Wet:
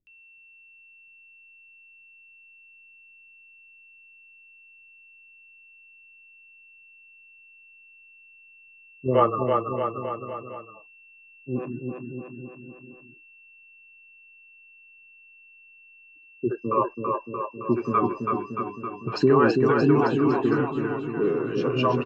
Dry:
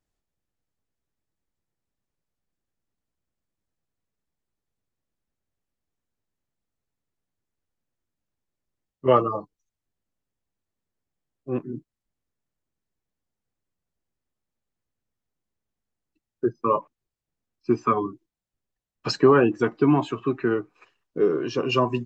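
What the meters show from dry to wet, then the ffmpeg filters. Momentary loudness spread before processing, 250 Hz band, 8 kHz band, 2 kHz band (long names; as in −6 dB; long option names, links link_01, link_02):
15 LU, +1.0 dB, can't be measured, +1.0 dB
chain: -filter_complex "[0:a]aemphasis=mode=reproduction:type=75fm,asplit=2[link_01][link_02];[link_02]aecho=0:1:330|627|894.3|1135|1351:0.631|0.398|0.251|0.158|0.1[link_03];[link_01][link_03]amix=inputs=2:normalize=0,aeval=exprs='val(0)+0.00316*sin(2*PI*2700*n/s)':channel_layout=same,acrossover=split=420[link_04][link_05];[link_05]adelay=70[link_06];[link_04][link_06]amix=inputs=2:normalize=0"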